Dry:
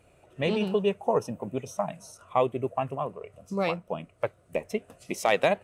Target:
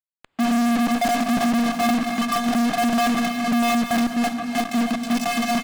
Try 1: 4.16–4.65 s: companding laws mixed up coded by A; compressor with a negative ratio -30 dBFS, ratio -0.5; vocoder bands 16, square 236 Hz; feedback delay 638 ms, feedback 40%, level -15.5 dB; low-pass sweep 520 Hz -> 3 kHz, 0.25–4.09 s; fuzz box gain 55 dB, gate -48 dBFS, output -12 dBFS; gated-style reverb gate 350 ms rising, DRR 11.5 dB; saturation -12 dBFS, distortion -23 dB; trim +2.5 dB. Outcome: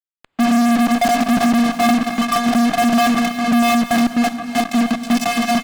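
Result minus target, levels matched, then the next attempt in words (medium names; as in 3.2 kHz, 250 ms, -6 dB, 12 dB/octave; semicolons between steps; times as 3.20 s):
saturation: distortion -11 dB
4.16–4.65 s: companding laws mixed up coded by A; compressor with a negative ratio -30 dBFS, ratio -0.5; vocoder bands 16, square 236 Hz; feedback delay 638 ms, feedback 40%, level -15.5 dB; low-pass sweep 520 Hz -> 3 kHz, 0.25–4.09 s; fuzz box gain 55 dB, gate -48 dBFS, output -12 dBFS; gated-style reverb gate 350 ms rising, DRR 11.5 dB; saturation -20.5 dBFS, distortion -13 dB; trim +2.5 dB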